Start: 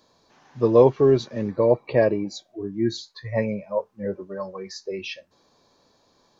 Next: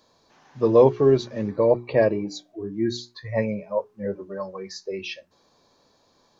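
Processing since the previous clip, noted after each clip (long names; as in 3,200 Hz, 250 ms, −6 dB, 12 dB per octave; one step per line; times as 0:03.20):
mains-hum notches 60/120/180/240/300/360/420 Hz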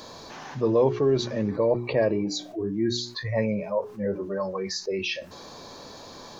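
envelope flattener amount 50%
level −7 dB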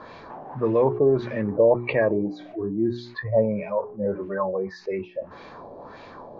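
auto-filter low-pass sine 1.7 Hz 610–2,400 Hz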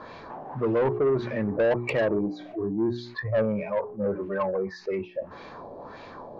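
soft clipping −18 dBFS, distortion −11 dB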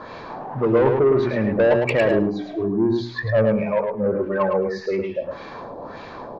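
repeating echo 107 ms, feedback 15%, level −5 dB
level +5.5 dB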